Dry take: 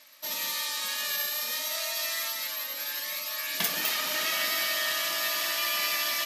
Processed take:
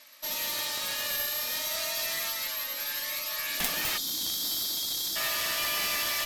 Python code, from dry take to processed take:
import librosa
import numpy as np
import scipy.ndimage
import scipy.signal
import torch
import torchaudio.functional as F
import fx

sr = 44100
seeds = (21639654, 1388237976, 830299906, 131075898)

y = fx.spec_erase(x, sr, start_s=3.98, length_s=1.18, low_hz=350.0, high_hz=3100.0)
y = fx.cheby_harmonics(y, sr, harmonics=(3, 6, 7), levels_db=(-7, -25, -31), full_scale_db=-10.5)
y = y * 10.0 ** (6.5 / 20.0)